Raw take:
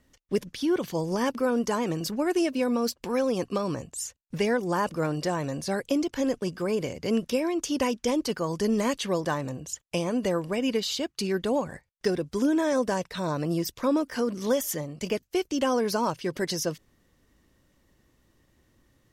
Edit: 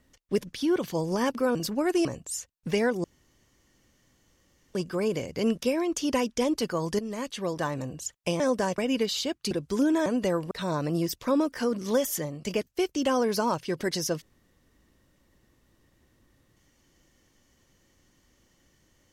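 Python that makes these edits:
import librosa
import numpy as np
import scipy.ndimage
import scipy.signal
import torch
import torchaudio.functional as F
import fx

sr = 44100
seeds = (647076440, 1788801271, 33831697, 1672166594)

y = fx.edit(x, sr, fx.cut(start_s=1.55, length_s=0.41),
    fx.cut(start_s=2.46, length_s=1.26),
    fx.room_tone_fill(start_s=4.71, length_s=1.7),
    fx.fade_in_from(start_s=8.66, length_s=0.85, floor_db=-12.5),
    fx.swap(start_s=10.07, length_s=0.45, other_s=12.69, other_length_s=0.38),
    fx.cut(start_s=11.25, length_s=0.89), tone=tone)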